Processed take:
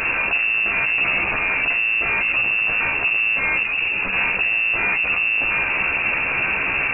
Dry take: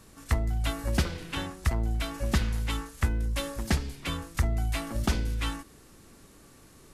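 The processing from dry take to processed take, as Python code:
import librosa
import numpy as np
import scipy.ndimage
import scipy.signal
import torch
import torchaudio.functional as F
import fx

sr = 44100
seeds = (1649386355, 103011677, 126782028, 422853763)

p1 = fx.delta_mod(x, sr, bps=32000, step_db=-29.5)
p2 = fx.over_compress(p1, sr, threshold_db=-32.0, ratio=-1.0)
p3 = p1 + (p2 * librosa.db_to_amplitude(-1.5))
p4 = np.clip(10.0 ** (29.5 / 20.0) * p3, -1.0, 1.0) / 10.0 ** (29.5 / 20.0)
p5 = fx.doubler(p4, sr, ms=14.0, db=-2.5)
p6 = fx.freq_invert(p5, sr, carrier_hz=2700)
p7 = fx.ensemble(p6, sr, at=(3.63, 4.13))
y = p7 * librosa.db_to_amplitude(7.5)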